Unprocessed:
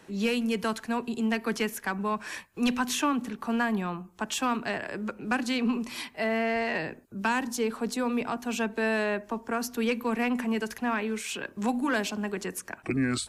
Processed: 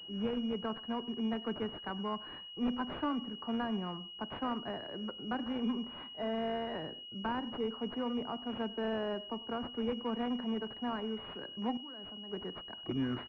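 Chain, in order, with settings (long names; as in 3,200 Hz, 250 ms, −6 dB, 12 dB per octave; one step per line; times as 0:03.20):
far-end echo of a speakerphone 100 ms, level −17 dB
0:11.77–0:12.31: output level in coarse steps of 21 dB
switching amplifier with a slow clock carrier 2,900 Hz
level −7 dB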